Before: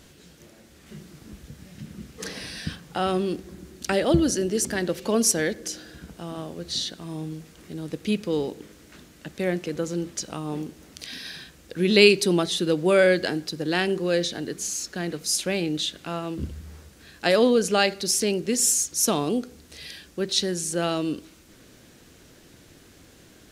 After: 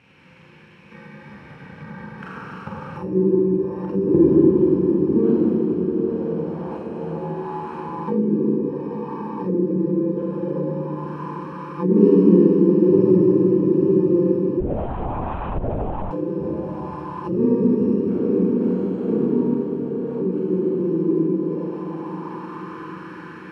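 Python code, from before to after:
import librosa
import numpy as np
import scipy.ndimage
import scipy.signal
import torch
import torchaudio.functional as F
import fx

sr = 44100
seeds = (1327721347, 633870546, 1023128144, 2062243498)

p1 = fx.bit_reversed(x, sr, seeds[0], block=64)
p2 = scipy.signal.sosfilt(scipy.signal.butter(4, 95.0, 'highpass', fs=sr, output='sos'), p1)
p3 = p2 + fx.echo_diffused(p2, sr, ms=835, feedback_pct=57, wet_db=-8.0, dry=0)
p4 = fx.rev_schroeder(p3, sr, rt60_s=4.0, comb_ms=33, drr_db=-7.5)
p5 = fx.lpc_vocoder(p4, sr, seeds[1], excitation='whisper', order=10, at=(14.6, 16.11))
p6 = fx.envelope_lowpass(p5, sr, base_hz=380.0, top_hz=2400.0, q=2.8, full_db=-15.5, direction='down')
y = p6 * librosa.db_to_amplitude(-2.0)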